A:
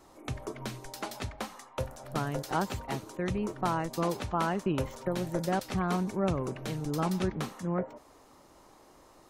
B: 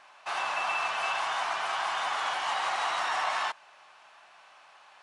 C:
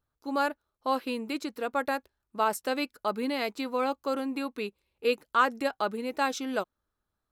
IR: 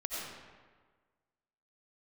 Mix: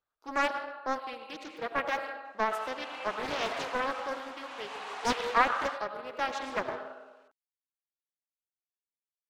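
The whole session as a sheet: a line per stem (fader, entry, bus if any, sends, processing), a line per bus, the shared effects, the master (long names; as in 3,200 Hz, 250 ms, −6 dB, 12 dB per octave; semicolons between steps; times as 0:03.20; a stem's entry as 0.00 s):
muted
−12.0 dB, 2.25 s, no send, leveller curve on the samples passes 1
−2.5 dB, 0.00 s, send −3 dB, reverb reduction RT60 1.6 s; three-way crossover with the lows and the highs turned down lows −17 dB, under 400 Hz, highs −12 dB, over 4,500 Hz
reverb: on, RT60 1.5 s, pre-delay 50 ms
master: shaped tremolo triangle 0.63 Hz, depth 60%; highs frequency-modulated by the lows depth 0.79 ms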